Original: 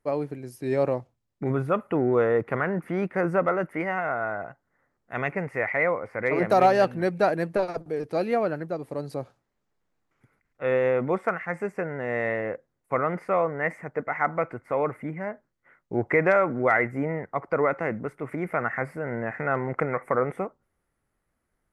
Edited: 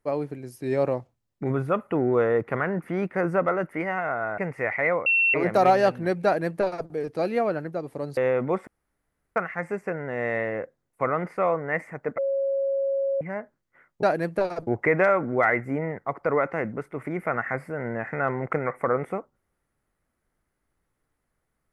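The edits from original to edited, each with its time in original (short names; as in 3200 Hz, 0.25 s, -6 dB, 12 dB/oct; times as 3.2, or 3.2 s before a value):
4.38–5.34 cut
6.02–6.3 bleep 2710 Hz -17.5 dBFS
7.21–7.85 copy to 15.94
9.13–10.77 cut
11.27 insert room tone 0.69 s
14.09–15.12 bleep 548 Hz -22 dBFS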